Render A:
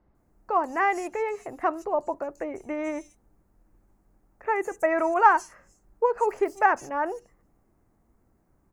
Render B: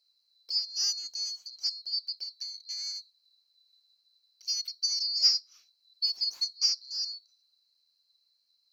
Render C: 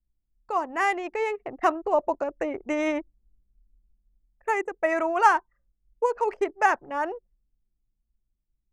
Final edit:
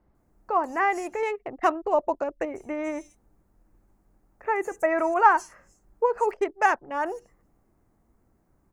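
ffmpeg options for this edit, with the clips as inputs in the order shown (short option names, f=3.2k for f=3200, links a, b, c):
-filter_complex "[2:a]asplit=2[a][b];[0:a]asplit=3[c][d][e];[c]atrim=end=1.232[f];[a]atrim=start=1.228:end=2.452[g];[d]atrim=start=2.448:end=6.312[h];[b]atrim=start=6.308:end=7.052[i];[e]atrim=start=7.048[j];[f][g]acrossfade=d=0.004:c1=hsin:c2=hsin[k];[k][h]acrossfade=d=0.004:c1=hsin:c2=hsin[l];[l][i]acrossfade=d=0.004:c1=hsin:c2=hsin[m];[m][j]acrossfade=d=0.004:c1=hsin:c2=hsin"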